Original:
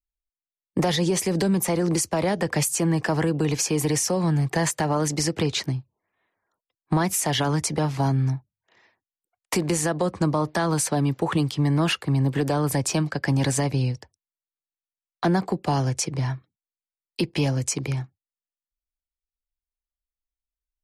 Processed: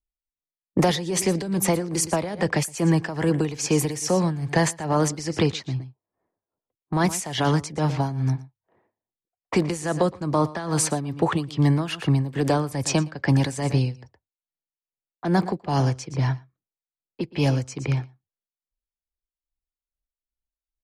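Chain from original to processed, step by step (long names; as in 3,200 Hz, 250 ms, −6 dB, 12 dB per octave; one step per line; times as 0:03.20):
low-pass that shuts in the quiet parts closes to 580 Hz, open at −18.5 dBFS
single-tap delay 117 ms −16 dB
amplitude tremolo 2.4 Hz, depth 77%
level +3.5 dB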